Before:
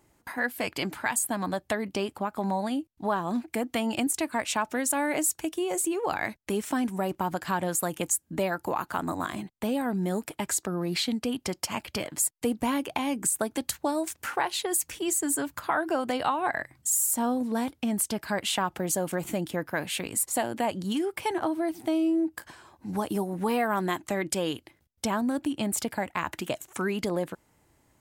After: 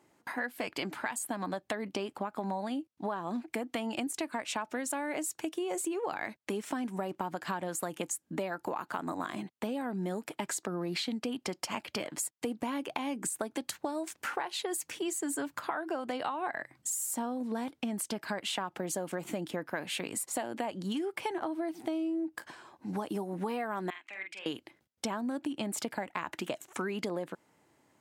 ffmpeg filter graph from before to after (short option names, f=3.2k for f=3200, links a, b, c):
-filter_complex "[0:a]asettb=1/sr,asplit=3[a][b][c];[a]atrim=end=23.904[d];[b]atrim=start=23.9:end=24.46,asetpts=PTS-STARTPTS,afade=t=in:d=0.004:c=qsin,afade=t=out:st=0.556:d=0.004:c=qsin,bandpass=f=2.4k:t=q:w=4,asplit=2[e][f];[f]adelay=47,volume=-5dB[g];[e][g]amix=inputs=2:normalize=0,atrim=end_sample=24696[h];[c]atrim=start=24.456[i];[d][h]acrossfade=d=0.004:c1=hsin:c2=qsin[j];[j][i]acrossfade=d=0.004:c1=qsin:c2=hsin,highpass=180,highshelf=f=8.4k:g=-10.5,acompressor=threshold=-31dB:ratio=6"